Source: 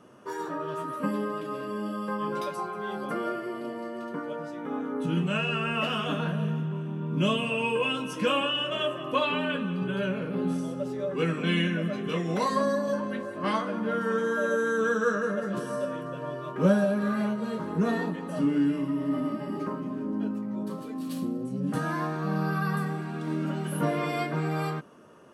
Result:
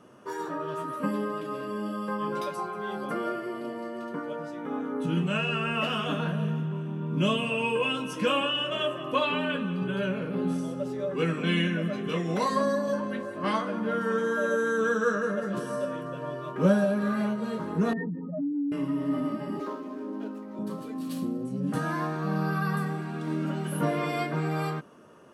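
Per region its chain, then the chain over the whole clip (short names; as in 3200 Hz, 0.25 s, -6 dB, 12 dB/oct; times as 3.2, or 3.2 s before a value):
17.93–18.72 spectral contrast raised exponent 2.9 + de-hum 149.9 Hz, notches 2 + compressor 3:1, threshold -28 dBFS
19.6–20.59 median filter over 15 samples + HPF 280 Hz 24 dB/oct
whole clip: dry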